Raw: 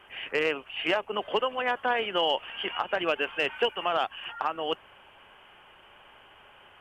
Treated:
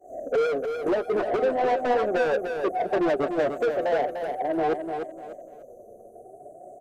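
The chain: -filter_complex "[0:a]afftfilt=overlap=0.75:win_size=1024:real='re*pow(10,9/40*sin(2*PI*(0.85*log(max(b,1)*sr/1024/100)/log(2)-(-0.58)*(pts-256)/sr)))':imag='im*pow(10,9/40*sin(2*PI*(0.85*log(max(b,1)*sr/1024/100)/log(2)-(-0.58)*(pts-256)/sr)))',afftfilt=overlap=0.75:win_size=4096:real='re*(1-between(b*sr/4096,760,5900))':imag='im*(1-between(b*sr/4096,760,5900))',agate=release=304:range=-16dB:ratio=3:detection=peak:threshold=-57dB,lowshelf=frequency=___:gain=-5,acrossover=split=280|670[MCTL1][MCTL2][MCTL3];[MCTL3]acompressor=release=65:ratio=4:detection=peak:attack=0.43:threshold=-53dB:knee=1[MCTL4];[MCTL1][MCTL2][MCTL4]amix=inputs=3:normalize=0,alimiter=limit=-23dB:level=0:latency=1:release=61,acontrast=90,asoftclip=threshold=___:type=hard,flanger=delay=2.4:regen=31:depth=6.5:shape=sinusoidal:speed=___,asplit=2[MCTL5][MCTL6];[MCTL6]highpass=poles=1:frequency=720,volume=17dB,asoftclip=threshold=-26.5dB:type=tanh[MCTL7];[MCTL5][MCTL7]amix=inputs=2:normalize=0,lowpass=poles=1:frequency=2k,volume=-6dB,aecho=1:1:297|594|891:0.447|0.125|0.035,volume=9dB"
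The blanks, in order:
290, -26.5dB, 0.41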